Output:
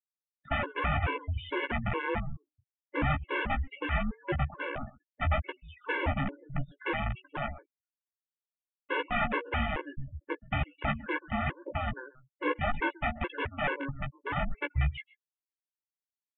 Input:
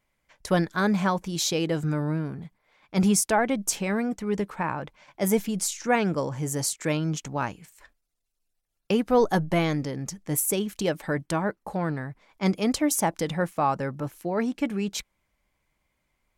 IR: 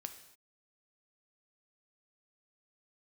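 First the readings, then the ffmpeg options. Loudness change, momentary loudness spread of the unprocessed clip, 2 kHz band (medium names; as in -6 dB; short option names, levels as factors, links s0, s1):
-6.5 dB, 9 LU, +0.5 dB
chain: -filter_complex "[0:a]highpass=56,bandreject=f=248.8:t=h:w=4,bandreject=f=497.6:t=h:w=4,bandreject=f=746.4:t=h:w=4,bandreject=f=995.2:t=h:w=4,afftfilt=real='re*gte(hypot(re,im),0.02)':imag='im*gte(hypot(re,im),0.02)':win_size=1024:overlap=0.75,agate=range=0.112:threshold=0.00447:ratio=16:detection=peak,acrossover=split=330[s0][s1];[s1]crystalizer=i=2:c=0[s2];[s0][s2]amix=inputs=2:normalize=0,aecho=1:1:131:0.0944,aresample=8000,aeval=exprs='(mod(10*val(0)+1,2)-1)/10':c=same,aresample=44100,highpass=f=170:t=q:w=0.5412,highpass=f=170:t=q:w=1.307,lowpass=f=2800:t=q:w=0.5176,lowpass=f=2800:t=q:w=0.7071,lowpass=f=2800:t=q:w=1.932,afreqshift=-270,asplit=2[s3][s4];[s4]adelay=14,volume=0.501[s5];[s3][s5]amix=inputs=2:normalize=0,afftfilt=real='re*gt(sin(2*PI*2.3*pts/sr)*(1-2*mod(floor(b*sr/1024/290),2)),0)':imag='im*gt(sin(2*PI*2.3*pts/sr)*(1-2*mod(floor(b*sr/1024/290),2)),0)':win_size=1024:overlap=0.75"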